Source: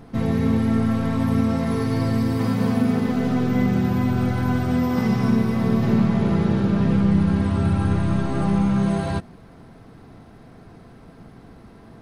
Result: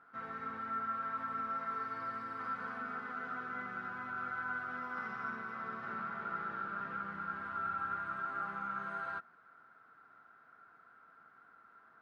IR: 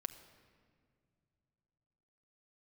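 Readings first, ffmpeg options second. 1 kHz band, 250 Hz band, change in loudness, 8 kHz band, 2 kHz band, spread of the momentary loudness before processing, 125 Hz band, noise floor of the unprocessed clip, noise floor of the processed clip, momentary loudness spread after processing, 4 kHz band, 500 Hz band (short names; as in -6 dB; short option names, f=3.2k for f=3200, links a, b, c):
-6.0 dB, -32.5 dB, -18.5 dB, n/a, -5.5 dB, 3 LU, -36.5 dB, -46 dBFS, -63 dBFS, 4 LU, under -20 dB, -24.5 dB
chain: -af "bandpass=f=1.4k:t=q:w=13:csg=0,volume=5.5dB"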